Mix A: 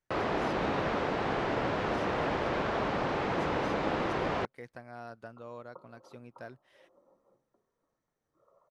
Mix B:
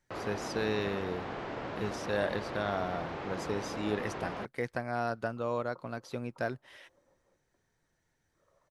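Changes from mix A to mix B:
speech +12.0 dB
first sound −8.0 dB
second sound −5.0 dB

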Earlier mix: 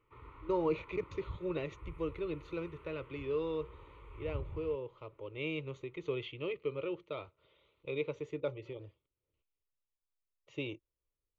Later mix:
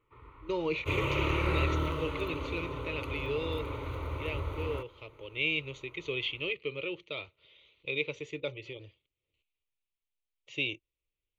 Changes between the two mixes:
speech: add high shelf with overshoot 1,800 Hz +10.5 dB, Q 1.5
second sound: unmuted

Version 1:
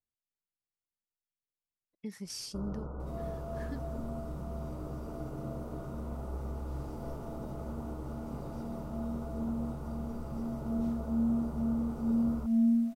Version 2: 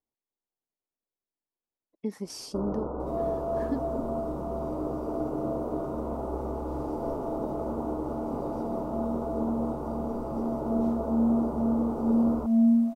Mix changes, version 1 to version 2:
second sound: add parametric band 110 Hz −8.5 dB 2.1 octaves
master: add flat-topped bell 510 Hz +12.5 dB 2.6 octaves

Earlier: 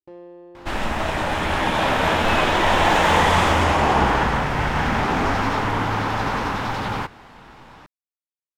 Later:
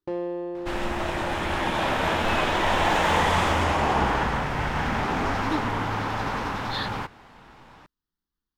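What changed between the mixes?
speech: unmuted
first sound +11.5 dB
second sound −5.0 dB

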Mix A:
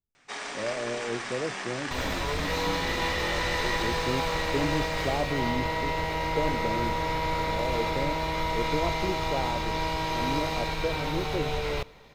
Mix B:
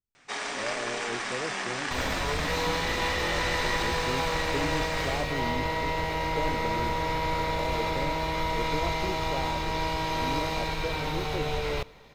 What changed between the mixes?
speech −4.0 dB
first sound +3.0 dB

